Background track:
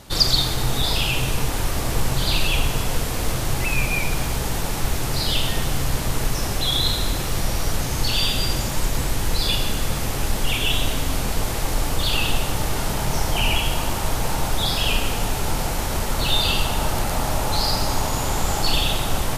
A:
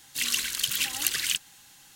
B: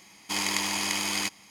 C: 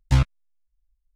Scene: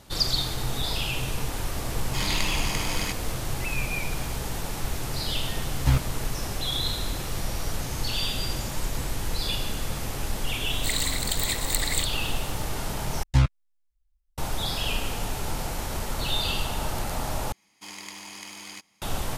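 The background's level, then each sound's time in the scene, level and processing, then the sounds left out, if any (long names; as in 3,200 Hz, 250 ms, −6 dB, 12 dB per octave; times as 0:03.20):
background track −7 dB
0:01.84: mix in B −1.5 dB + high-shelf EQ 6,000 Hz −5.5 dB
0:05.75: mix in C −3 dB + one scale factor per block 7 bits
0:10.68: mix in A −4 dB + EQ curve with evenly spaced ripples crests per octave 1, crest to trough 17 dB
0:13.23: overwrite with C −1.5 dB
0:17.52: overwrite with B −12.5 dB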